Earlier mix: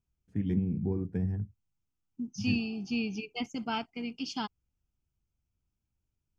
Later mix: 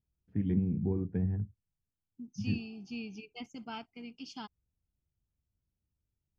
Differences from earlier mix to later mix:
first voice: add distance through air 290 m; second voice -9.0 dB

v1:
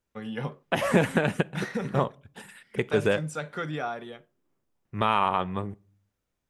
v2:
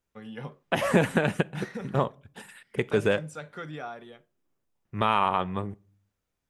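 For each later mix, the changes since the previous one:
first voice -6.0 dB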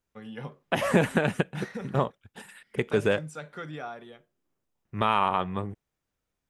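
reverb: off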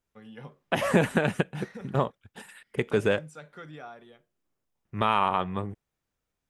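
first voice -5.5 dB

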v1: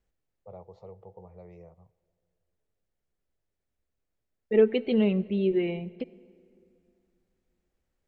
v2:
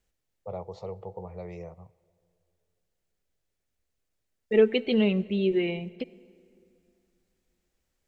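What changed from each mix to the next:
first voice +8.5 dB; master: add treble shelf 2.4 kHz +10.5 dB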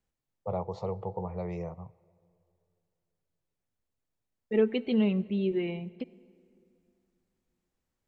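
second voice -8.5 dB; master: add graphic EQ 125/250/1000 Hz +7/+6/+7 dB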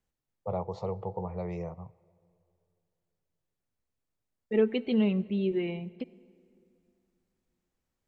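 no change

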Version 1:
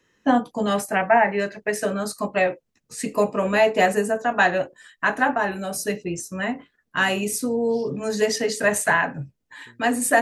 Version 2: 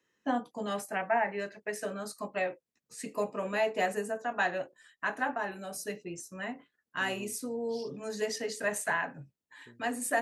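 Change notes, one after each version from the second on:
first voice -11.0 dB; master: add high-pass 190 Hz 6 dB/octave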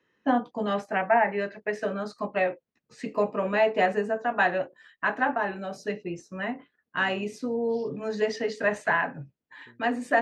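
first voice +7.5 dB; master: add distance through air 200 m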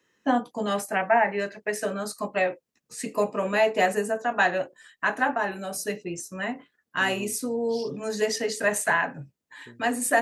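second voice +7.5 dB; master: remove distance through air 200 m

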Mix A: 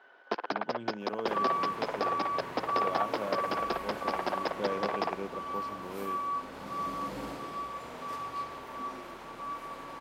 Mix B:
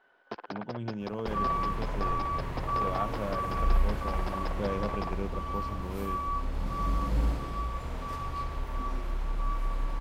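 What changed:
first sound -7.5 dB; master: remove high-pass 270 Hz 12 dB/octave

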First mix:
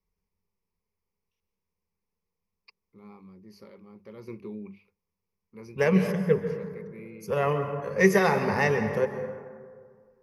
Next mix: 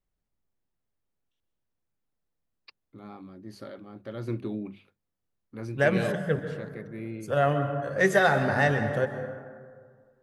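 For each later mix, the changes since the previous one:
first voice +8.0 dB; master: remove rippled EQ curve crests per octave 0.83, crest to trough 14 dB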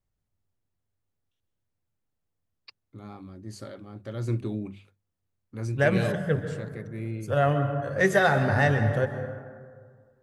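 first voice: add peaking EQ 7.5 kHz +15 dB 0.72 oct; master: add peaking EQ 98 Hz +11.5 dB 0.66 oct

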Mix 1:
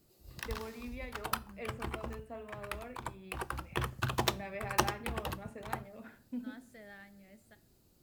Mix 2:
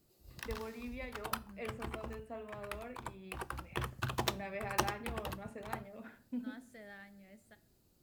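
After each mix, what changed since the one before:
background -3.5 dB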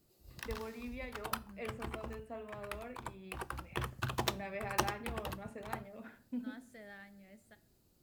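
no change

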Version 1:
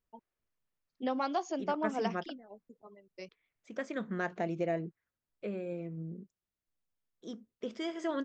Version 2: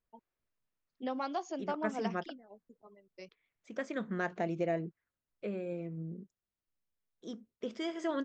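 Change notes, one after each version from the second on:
first voice -3.5 dB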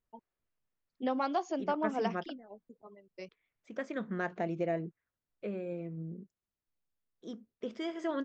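first voice +4.5 dB; master: add treble shelf 5.3 kHz -8 dB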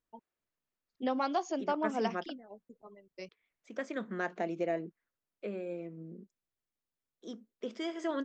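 second voice: add high-pass 200 Hz 24 dB/octave; master: add treble shelf 5.3 kHz +8 dB

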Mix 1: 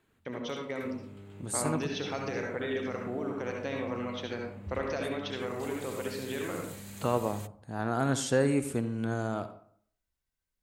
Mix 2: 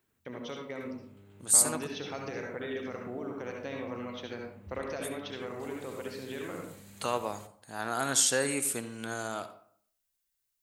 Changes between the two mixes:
first voice -3.5 dB; second voice: add tilt EQ +4 dB/octave; background -7.5 dB

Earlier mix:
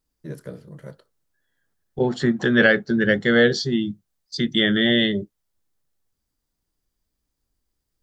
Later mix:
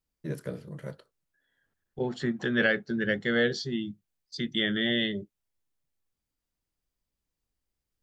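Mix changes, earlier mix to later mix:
second voice -9.5 dB; master: add peaking EQ 2.5 kHz +4.5 dB 0.66 oct

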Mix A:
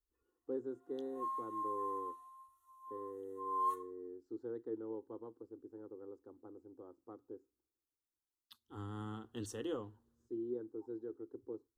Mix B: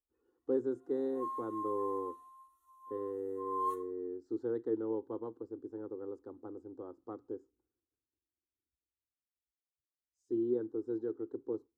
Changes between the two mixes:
first voice +8.0 dB; second voice: muted

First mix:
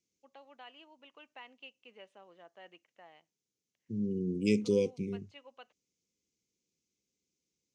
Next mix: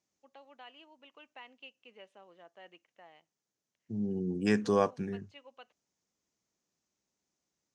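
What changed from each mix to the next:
second voice: remove brick-wall FIR band-stop 550–2000 Hz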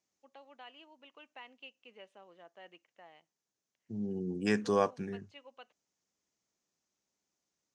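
second voice: add bass shelf 320 Hz -4.5 dB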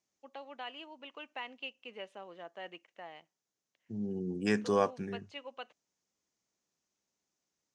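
first voice +8.5 dB

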